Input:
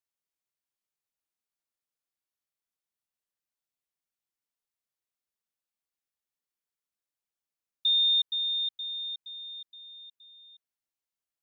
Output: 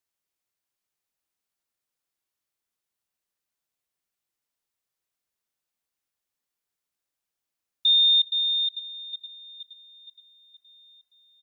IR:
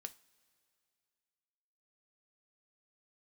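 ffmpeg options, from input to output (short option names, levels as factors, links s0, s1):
-filter_complex "[0:a]aecho=1:1:915:0.237,asplit=2[s0][s1];[1:a]atrim=start_sample=2205[s2];[s1][s2]afir=irnorm=-1:irlink=0,volume=1.41[s3];[s0][s3]amix=inputs=2:normalize=0"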